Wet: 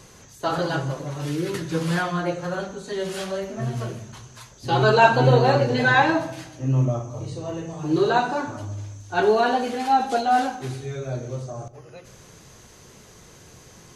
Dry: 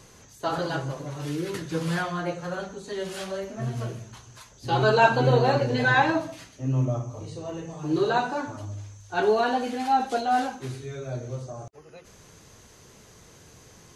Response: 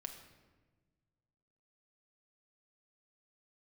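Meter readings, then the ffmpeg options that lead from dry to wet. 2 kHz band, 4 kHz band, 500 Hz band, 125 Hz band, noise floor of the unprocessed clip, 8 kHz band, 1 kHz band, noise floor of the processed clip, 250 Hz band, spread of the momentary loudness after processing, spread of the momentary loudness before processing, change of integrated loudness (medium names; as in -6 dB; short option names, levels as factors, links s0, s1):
+3.0 dB, +3.5 dB, +3.5 dB, +4.0 dB, -52 dBFS, +3.5 dB, +3.5 dB, -49 dBFS, +3.5 dB, 16 LU, 16 LU, +3.5 dB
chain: -filter_complex "[0:a]asplit=2[s0][s1];[1:a]atrim=start_sample=2205[s2];[s1][s2]afir=irnorm=-1:irlink=0,volume=0.794[s3];[s0][s3]amix=inputs=2:normalize=0"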